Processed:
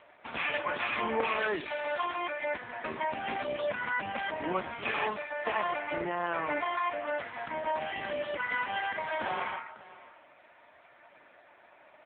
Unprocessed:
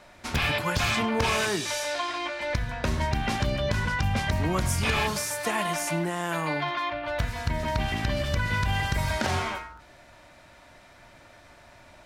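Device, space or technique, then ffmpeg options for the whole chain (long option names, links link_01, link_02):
satellite phone: -af "highpass=340,lowpass=3200,aecho=1:1:547:0.112" -ar 8000 -c:a libopencore_amrnb -b:a 5900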